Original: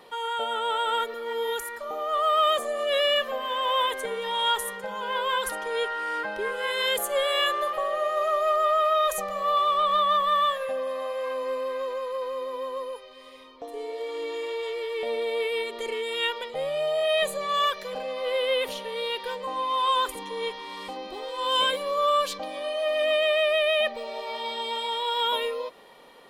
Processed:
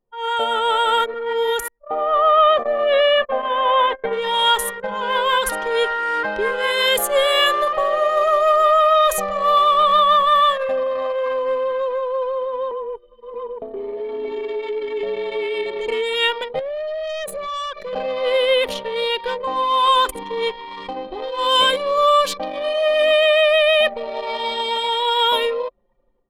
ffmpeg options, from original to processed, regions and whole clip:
-filter_complex "[0:a]asettb=1/sr,asplit=3[s0][s1][s2];[s0]atrim=end=1.684[s3];[s1]atrim=start=1.68:end=4.13,asetpts=PTS-STARTPTS,afade=t=in:d=0.004:c=qsin,afade=t=out:st=2.446:d=0.004:c=qsin,lowpass=2400,equalizer=f=740:t=o:w=0.3:g=6,agate=range=0.126:threshold=0.0224:ratio=16:release=100:detection=peak[s4];[s2]atrim=start=4.126[s5];[s3][s4]acrossfade=d=0.004:c1=hsin:c2=qsin[s6];[s6][s5]acrossfade=d=0.004:c1=qsin:c2=hsin,asettb=1/sr,asplit=3[s7][s8][s9];[s7]atrim=end=12.714[s10];[s8]atrim=start=12.71:end=15.88,asetpts=PTS-STARTPTS,afade=t=in:d=0.004:c=qsin,afade=t=out:st=3.166:d=0.004:c=qsin,aecho=1:1:353|513|628:0.141|0.316|0.668,atrim=end_sample=139797,acompressor=threshold=0.0224:ratio=2:attack=3.2:release=140:knee=1:detection=peak,afreqshift=-34[s11];[s9]atrim=start=15.876[s12];[s10][s11]acrossfade=d=0.004:c1=hsin:c2=qsin[s13];[s13][s12]acrossfade=d=0.004:c1=qsin:c2=hsin,asettb=1/sr,asplit=3[s14][s15][s16];[s14]atrim=end=16.594[s17];[s15]atrim=start=16.59:end=17.93,asetpts=PTS-STARTPTS,afade=t=in:d=0.004:c=qsin,afade=t=out:st=1.336:d=0.004:c=qsin,equalizer=f=13000:t=o:w=1.2:g=4.5,acompressor=threshold=0.0282:ratio=4:attack=3.2:release=140:knee=1:detection=peak,volume=39.8,asoftclip=hard,volume=0.0251[s18];[s16]atrim=start=17.926[s19];[s17][s18]acrossfade=d=0.004:c1=hsin:c2=qsin[s20];[s20][s19]acrossfade=d=0.004:c1=qsin:c2=hsin,dynaudnorm=f=140:g=3:m=3.35,anlmdn=398,lowshelf=f=120:g=6.5,volume=0.794"

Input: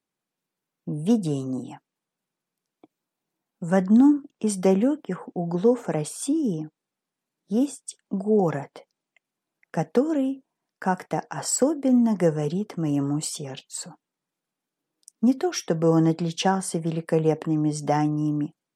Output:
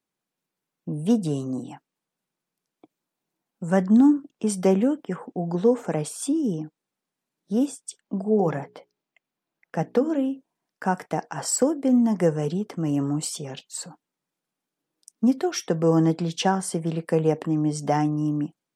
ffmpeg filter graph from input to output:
-filter_complex "[0:a]asettb=1/sr,asplit=3[s0][s1][s2];[s0]atrim=end=8.004[s3];[s1]atrim=start=8:end=10.31,asetpts=PTS-STARTPTS,afade=t=in:d=0.004:c=qsin,afade=t=out:st=2.306:d=0.004:c=qsin,equalizer=f=8700:w=0.94:g=-6.5,bandreject=f=60:t=h:w=6,bandreject=f=120:t=h:w=6,bandreject=f=180:t=h:w=6,bandreject=f=240:t=h:w=6,bandreject=f=300:t=h:w=6,bandreject=f=360:t=h:w=6,bandreject=f=420:t=h:w=6[s4];[s2]atrim=start=10.306[s5];[s3][s4]acrossfade=d=0.004:c1=hsin:c2=qsin[s6];[s6][s5]acrossfade=d=0.004:c1=qsin:c2=hsin"

